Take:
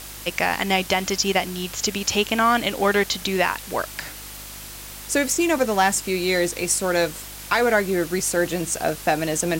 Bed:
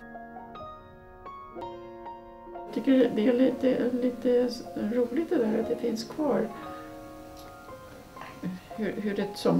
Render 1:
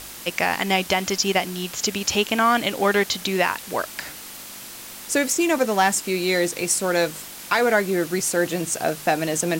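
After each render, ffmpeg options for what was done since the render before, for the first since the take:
-af "bandreject=f=50:t=h:w=4,bandreject=f=100:t=h:w=4,bandreject=f=150:t=h:w=4"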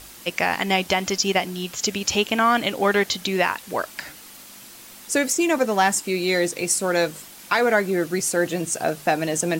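-af "afftdn=nr=6:nf=-38"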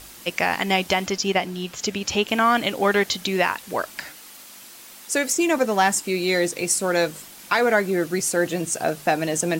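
-filter_complex "[0:a]asettb=1/sr,asplit=3[s0][s1][s2];[s0]atrim=end=1.064[s3];[s1]atrim=start=1.06:end=2.28,asetpts=PTS-STARTPTS,afade=t=in:d=0.004:c=qsin,afade=t=out:st=1.216:d=0.004:c=qsin,highshelf=f=5300:g=-7.5[s4];[s2]atrim=start=2.276[s5];[s3][s4]acrossfade=d=0.004:c1=hsin:c2=qsin[s6];[s6][s5]acrossfade=d=0.004:c1=qsin:c2=hsin,asettb=1/sr,asplit=3[s7][s8][s9];[s7]atrim=end=4.064[s10];[s8]atrim=start=4.06:end=5.29,asetpts=PTS-STARTPTS,afade=t=in:d=0.004:c=qsin,afade=t=out:st=1.226:d=0.004:c=qsin,lowshelf=f=230:g=-9.5[s11];[s9]atrim=start=5.286[s12];[s10][s11]acrossfade=d=0.004:c1=hsin:c2=qsin[s13];[s13][s12]acrossfade=d=0.004:c1=qsin:c2=hsin"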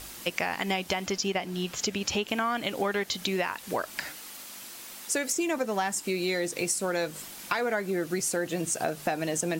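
-af "acompressor=threshold=0.0501:ratio=5"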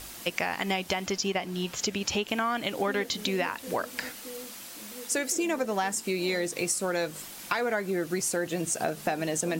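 -filter_complex "[1:a]volume=0.112[s0];[0:a][s0]amix=inputs=2:normalize=0"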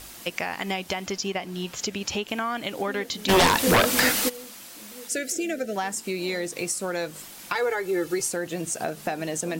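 -filter_complex "[0:a]asplit=3[s0][s1][s2];[s0]afade=t=out:st=3.28:d=0.02[s3];[s1]aeval=exprs='0.211*sin(PI/2*5.62*val(0)/0.211)':c=same,afade=t=in:st=3.28:d=0.02,afade=t=out:st=4.28:d=0.02[s4];[s2]afade=t=in:st=4.28:d=0.02[s5];[s3][s4][s5]amix=inputs=3:normalize=0,asettb=1/sr,asplit=3[s6][s7][s8];[s6]atrim=end=5.084[s9];[s7]atrim=start=5.08:end=5.76,asetpts=PTS-STARTPTS,afade=t=in:d=0.004:c=qsin,afade=t=out:st=0.676:d=0.004:c=qsin,asuperstop=centerf=1000:order=12:qfactor=1.7[s10];[s8]atrim=start=5.756[s11];[s9][s10]acrossfade=d=0.004:c1=hsin:c2=qsin[s12];[s12][s11]acrossfade=d=0.004:c1=qsin:c2=hsin,asettb=1/sr,asplit=3[s13][s14][s15];[s13]atrim=end=7.554[s16];[s14]atrim=start=7.55:end=8.27,asetpts=PTS-STARTPTS,afade=t=in:d=0.004:c=qsin,afade=t=out:st=0.716:d=0.004:c=qsin,aecho=1:1:2.3:0.97,atrim=end_sample=31752[s17];[s15]atrim=start=8.266[s18];[s16][s17]acrossfade=d=0.004:c1=hsin:c2=qsin[s19];[s19][s18]acrossfade=d=0.004:c1=qsin:c2=hsin"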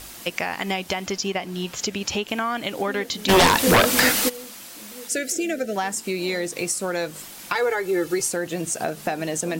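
-af "volume=1.41"

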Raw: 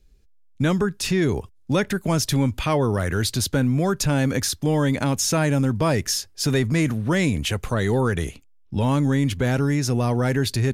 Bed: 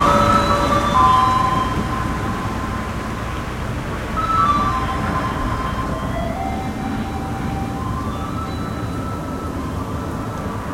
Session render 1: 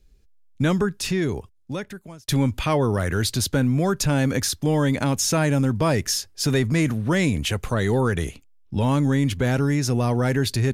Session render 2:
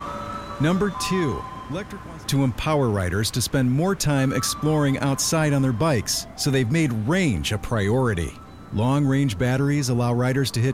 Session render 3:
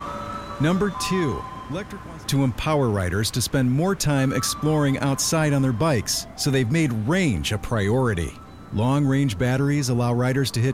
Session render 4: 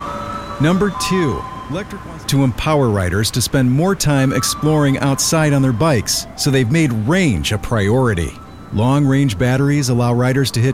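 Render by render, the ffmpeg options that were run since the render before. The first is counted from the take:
-filter_complex "[0:a]asplit=2[s0][s1];[s0]atrim=end=2.28,asetpts=PTS-STARTPTS,afade=t=out:st=0.82:d=1.46[s2];[s1]atrim=start=2.28,asetpts=PTS-STARTPTS,afade=t=in:d=0.004:c=hsin[s3];[s2][s3]concat=n=2:v=0:a=1"
-filter_complex "[1:a]volume=0.133[s0];[0:a][s0]amix=inputs=2:normalize=0"
-af anull
-af "volume=2.11"

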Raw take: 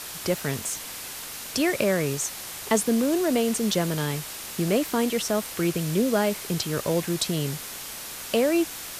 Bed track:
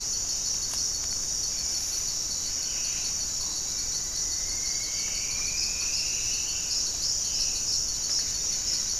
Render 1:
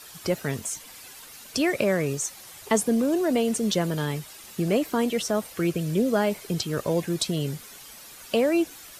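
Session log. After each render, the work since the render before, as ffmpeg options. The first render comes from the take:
-af "afftdn=nr=11:nf=-37"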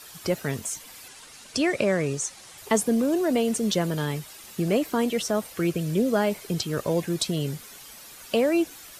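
-filter_complex "[0:a]asettb=1/sr,asplit=3[s0][s1][s2];[s0]atrim=end=1.084[s3];[s1]atrim=start=1.08:end=2.58,asetpts=PTS-STARTPTS,afade=t=in:d=0.004:c=qsin,afade=t=out:st=1.496:d=0.004:c=qsin,lowpass=f=10000:w=0.5412,lowpass=f=10000:w=1.3066[s4];[s2]atrim=start=2.576[s5];[s3][s4]acrossfade=d=0.004:c1=hsin:c2=qsin[s6];[s6][s5]acrossfade=d=0.004:c1=qsin:c2=hsin"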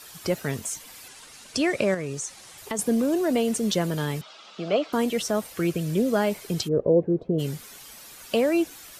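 -filter_complex "[0:a]asettb=1/sr,asplit=3[s0][s1][s2];[s0]atrim=end=1.944[s3];[s1]atrim=start=1.94:end=2.79,asetpts=PTS-STARTPTS,afade=t=in:d=0.004:c=qsin,afade=t=out:st=0.846:d=0.004:c=qsin,acompressor=threshold=0.0355:ratio=2.5:attack=3.2:release=140:knee=1:detection=peak[s4];[s2]atrim=start=2.786[s5];[s3][s4]acrossfade=d=0.004:c1=hsin:c2=qsin[s6];[s6][s5]acrossfade=d=0.004:c1=qsin:c2=hsin,asettb=1/sr,asplit=3[s7][s8][s9];[s7]atrim=end=4.214[s10];[s8]atrim=start=4.21:end=4.93,asetpts=PTS-STARTPTS,afade=t=in:d=0.004:c=qsin,afade=t=out:st=0.716:d=0.004:c=qsin,highpass=f=210:w=0.5412,highpass=f=210:w=1.3066,equalizer=f=240:t=q:w=4:g=-8,equalizer=f=360:t=q:w=4:g=-7,equalizer=f=650:t=q:w=4:g=7,equalizer=f=1300:t=q:w=4:g=9,equalizer=f=1800:t=q:w=4:g=-7,equalizer=f=3300:t=q:w=4:g=5,lowpass=f=5100:w=0.5412,lowpass=f=5100:w=1.3066[s11];[s9]atrim=start=4.926[s12];[s10][s11]acrossfade=d=0.004:c1=hsin:c2=qsin[s13];[s13][s12]acrossfade=d=0.004:c1=qsin:c2=hsin,asplit=3[s14][s15][s16];[s14]afade=t=out:st=6.67:d=0.02[s17];[s15]lowpass=f=470:t=q:w=2.6,afade=t=in:st=6.67:d=0.02,afade=t=out:st=7.38:d=0.02[s18];[s16]afade=t=in:st=7.38:d=0.02[s19];[s17][s18][s19]amix=inputs=3:normalize=0"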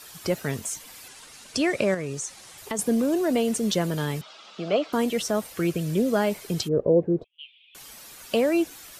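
-filter_complex "[0:a]asettb=1/sr,asplit=3[s0][s1][s2];[s0]atrim=end=7.244[s3];[s1]atrim=start=7.24:end=7.75,asetpts=PTS-STARTPTS,afade=t=in:d=0.004:c=qsin,afade=t=out:st=0.506:d=0.004:c=qsin,asuperpass=centerf=2900:order=8:qfactor=2.6[s4];[s2]atrim=start=7.746[s5];[s3][s4]acrossfade=d=0.004:c1=hsin:c2=qsin[s6];[s6][s5]acrossfade=d=0.004:c1=qsin:c2=hsin"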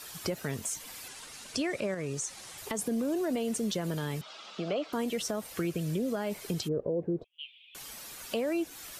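-af "alimiter=limit=0.141:level=0:latency=1:release=44,acompressor=threshold=0.0224:ratio=2"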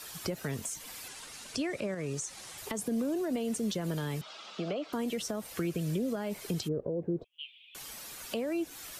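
-filter_complex "[0:a]acrossover=split=320[s0][s1];[s1]acompressor=threshold=0.0178:ratio=3[s2];[s0][s2]amix=inputs=2:normalize=0"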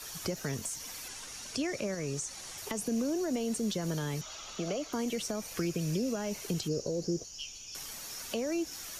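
-filter_complex "[1:a]volume=0.119[s0];[0:a][s0]amix=inputs=2:normalize=0"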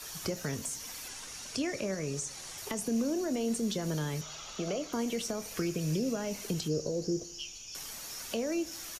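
-filter_complex "[0:a]asplit=2[s0][s1];[s1]adelay=26,volume=0.211[s2];[s0][s2]amix=inputs=2:normalize=0,asplit=2[s3][s4];[s4]adelay=78,lowpass=f=2000:p=1,volume=0.119,asplit=2[s5][s6];[s6]adelay=78,lowpass=f=2000:p=1,volume=0.54,asplit=2[s7][s8];[s8]adelay=78,lowpass=f=2000:p=1,volume=0.54,asplit=2[s9][s10];[s10]adelay=78,lowpass=f=2000:p=1,volume=0.54,asplit=2[s11][s12];[s12]adelay=78,lowpass=f=2000:p=1,volume=0.54[s13];[s3][s5][s7][s9][s11][s13]amix=inputs=6:normalize=0"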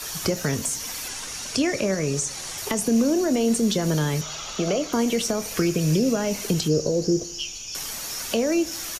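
-af "volume=3.35"

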